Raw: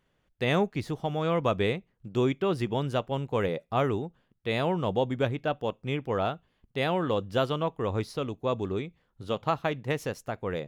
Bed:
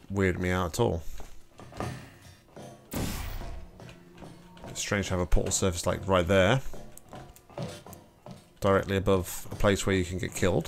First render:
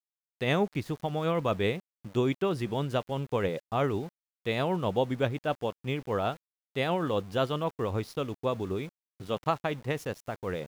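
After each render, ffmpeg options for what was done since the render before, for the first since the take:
-af "tremolo=f=7.8:d=0.3,aeval=exprs='val(0)*gte(abs(val(0)),0.00501)':c=same"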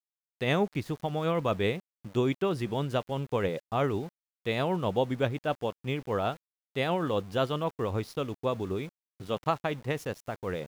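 -af anull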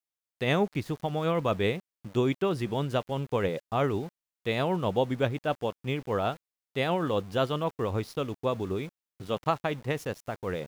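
-af "volume=1dB"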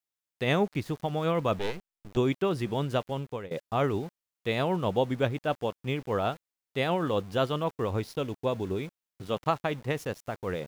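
-filter_complex "[0:a]asettb=1/sr,asplit=3[a][b][c];[a]atrim=end=1.594[d];[b]atrim=start=1.59:end=2.17,asetpts=PTS-STARTPTS,afade=t=in:d=0.004:c=qsin,afade=t=out:st=0.576:d=0.004:c=qsin,aeval=exprs='max(val(0),0)':c=same[e];[c]atrim=start=2.166[f];[d][e]acrossfade=d=0.004:c1=hsin:c2=qsin[g];[g][f]acrossfade=d=0.004:c1=qsin:c2=hsin,asettb=1/sr,asplit=3[h][i][j];[h]atrim=end=7.984[k];[i]atrim=start=7.98:end=8.8,asetpts=PTS-STARTPTS,afade=t=in:d=0.004:c=qsin,afade=t=out:st=0.816:d=0.004:c=qsin,asuperstop=centerf=1200:order=4:qfactor=7.5[l];[j]atrim=start=8.796[m];[k][l]acrossfade=d=0.004:c1=hsin:c2=qsin[n];[n][m]acrossfade=d=0.004:c1=qsin:c2=hsin,asplit=2[o][p];[o]atrim=end=3.51,asetpts=PTS-STARTPTS,afade=t=out:st=3.08:d=0.43:silence=0.0944061[q];[p]atrim=start=3.51,asetpts=PTS-STARTPTS,afade=t=in:d=0.004:c=hsin:silence=0.0944061[r];[q][r]concat=n=2:v=0:a=1"

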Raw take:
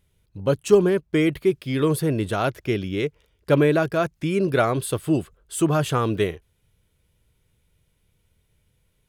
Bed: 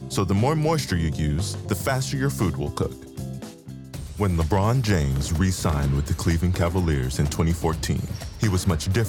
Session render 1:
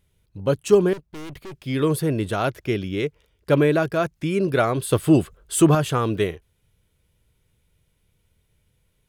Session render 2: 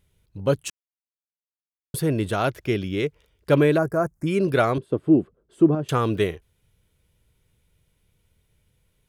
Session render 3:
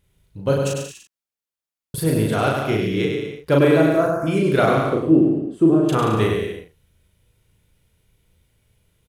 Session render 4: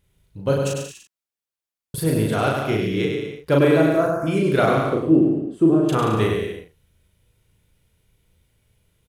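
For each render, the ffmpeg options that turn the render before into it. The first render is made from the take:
-filter_complex "[0:a]asettb=1/sr,asplit=3[a][b][c];[a]atrim=end=0.934[d];[b]atrim=start=0.93:end=1.64,asetpts=PTS-STARTPTS,afade=t=in:d=0.004:c=qsin,afade=t=out:st=0.706:d=0.004:c=qsin,aeval=exprs='(tanh(56.2*val(0)+0.55)-tanh(0.55))/56.2':c=same[e];[c]atrim=start=1.636[f];[d][e]acrossfade=d=0.004:c1=hsin:c2=qsin[g];[g][f]acrossfade=d=0.004:c1=qsin:c2=hsin,asettb=1/sr,asplit=3[h][i][j];[h]atrim=end=4.914[k];[i]atrim=start=4.91:end=5.75,asetpts=PTS-STARTPTS,afade=t=in:d=0.004:c=qsin,afade=t=out:st=0.836:d=0.004:c=qsin,acontrast=53[l];[j]atrim=start=5.746[m];[k][l]acrossfade=d=0.004:c1=hsin:c2=qsin[n];[n][m]acrossfade=d=0.004:c1=qsin:c2=hsin"
-filter_complex "[0:a]asplit=3[a][b][c];[a]afade=t=out:st=3.77:d=0.02[d];[b]asuperstop=centerf=3200:order=4:qfactor=0.6,afade=t=in:st=3.77:d=0.02,afade=t=out:st=4.26:d=0.02[e];[c]afade=t=in:st=4.26:d=0.02[f];[d][e][f]amix=inputs=3:normalize=0,asettb=1/sr,asplit=3[g][h][i];[g]atrim=end=4.784[j];[h]atrim=start=4.78:end=5.89,asetpts=PTS-STARTPTS,afade=t=in:d=0.004:c=qsin,afade=t=out:st=1.106:d=0.004:c=qsin,bandpass=f=290:t=q:w=1.3[k];[i]atrim=start=5.886[l];[j][k]acrossfade=d=0.004:c1=hsin:c2=qsin[m];[m][l]acrossfade=d=0.004:c1=qsin:c2=hsin,asplit=3[n][o][p];[n]atrim=end=0.7,asetpts=PTS-STARTPTS,afade=t=out:st=0.696:d=0.004:c=hsin[q];[o]atrim=start=0.7:end=1.94,asetpts=PTS-STARTPTS,volume=0[r];[p]atrim=start=1.94,asetpts=PTS-STARTPTS,afade=t=in:d=0.004:c=hsin[s];[q][r][s]concat=n=3:v=0:a=1"
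-filter_complex "[0:a]asplit=2[a][b];[b]adelay=37,volume=-2dB[c];[a][c]amix=inputs=2:normalize=0,aecho=1:1:100|180|244|295.2|336.2:0.631|0.398|0.251|0.158|0.1"
-af "volume=-1dB"

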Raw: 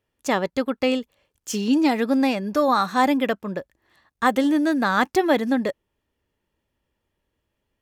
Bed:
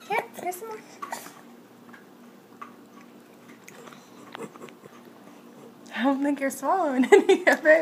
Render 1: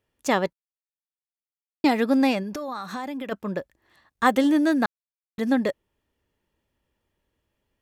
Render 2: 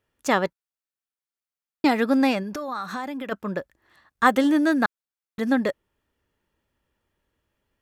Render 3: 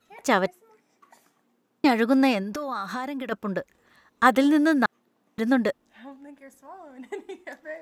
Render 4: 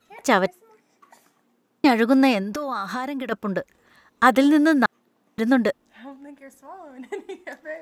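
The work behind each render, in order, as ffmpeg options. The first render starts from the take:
-filter_complex "[0:a]asplit=3[a][b][c];[a]afade=t=out:st=2.42:d=0.02[d];[b]acompressor=threshold=-28dB:ratio=16:attack=3.2:release=140:knee=1:detection=peak,afade=t=in:st=2.42:d=0.02,afade=t=out:st=3.31:d=0.02[e];[c]afade=t=in:st=3.31:d=0.02[f];[d][e][f]amix=inputs=3:normalize=0,asplit=5[g][h][i][j][k];[g]atrim=end=0.53,asetpts=PTS-STARTPTS,afade=t=out:st=0.526:d=0.004:c=hsin[l];[h]atrim=start=0.53:end=1.84,asetpts=PTS-STARTPTS,volume=0[m];[i]atrim=start=1.84:end=4.86,asetpts=PTS-STARTPTS,afade=t=in:d=0.004:c=hsin,afade=t=out:st=3.016:d=0.004:c=hsin[n];[j]atrim=start=4.86:end=5.38,asetpts=PTS-STARTPTS,volume=0[o];[k]atrim=start=5.38,asetpts=PTS-STARTPTS,afade=t=in:d=0.004:c=hsin[p];[l][m][n][o][p]concat=n=5:v=0:a=1"
-af "equalizer=f=1.4k:t=o:w=0.67:g=5"
-filter_complex "[1:a]volume=-20.5dB[a];[0:a][a]amix=inputs=2:normalize=0"
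-af "volume=3dB,alimiter=limit=-3dB:level=0:latency=1"

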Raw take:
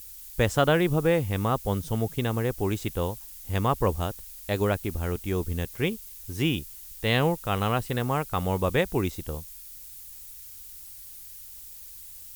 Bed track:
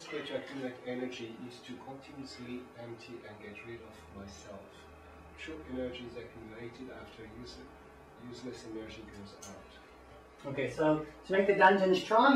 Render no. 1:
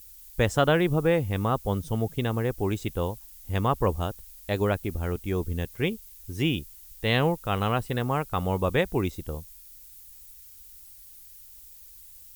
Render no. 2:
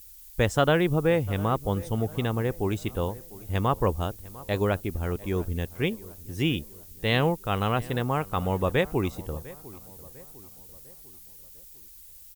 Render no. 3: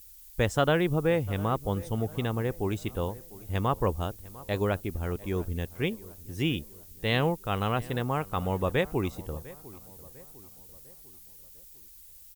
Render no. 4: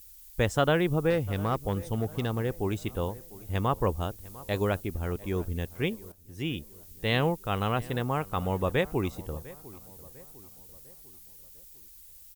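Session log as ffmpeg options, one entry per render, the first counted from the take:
-af "afftdn=nr=6:nf=-44"
-filter_complex "[0:a]asplit=2[a][b];[b]adelay=700,lowpass=f=1.8k:p=1,volume=-19dB,asplit=2[c][d];[d]adelay=700,lowpass=f=1.8k:p=1,volume=0.49,asplit=2[e][f];[f]adelay=700,lowpass=f=1.8k:p=1,volume=0.49,asplit=2[g][h];[h]adelay=700,lowpass=f=1.8k:p=1,volume=0.49[i];[a][c][e][g][i]amix=inputs=5:normalize=0"
-af "volume=-2.5dB"
-filter_complex "[0:a]asettb=1/sr,asplit=3[a][b][c];[a]atrim=end=1.104[d];[b]atrim=start=1.1:end=2.52,asetpts=PTS-STARTPTS,afade=t=in:d=0.004:c=qsin,afade=t=out:st=1.416:d=0.004:c=qsin,volume=19.5dB,asoftclip=hard,volume=-19.5dB[e];[c]atrim=start=2.516[f];[d][e]acrossfade=d=0.004:c1=hsin:c2=qsin[g];[g][f]acrossfade=d=0.004:c1=qsin:c2=hsin,asettb=1/sr,asplit=3[h][i][j];[h]atrim=end=4.214[k];[i]atrim=start=4.21:end=4.83,asetpts=PTS-STARTPTS,afade=t=in:d=0.004:c=qsin,afade=t=out:st=0.616:d=0.004:c=qsin,equalizer=f=10k:t=o:w=2.5:g=2.5[l];[j]atrim=start=4.826[m];[k][l]acrossfade=d=0.004:c1=hsin:c2=qsin[n];[n][m]acrossfade=d=0.004:c1=qsin:c2=hsin,asplit=2[o][p];[o]atrim=end=6.12,asetpts=PTS-STARTPTS,afade=t=out:st=6.116:d=0.004:c=hsin:silence=0.251189[q];[p]atrim=start=6.12,asetpts=PTS-STARTPTS,afade=t=in:d=0.75:silence=0.251189[r];[q][r]concat=n=2:v=0:a=1"

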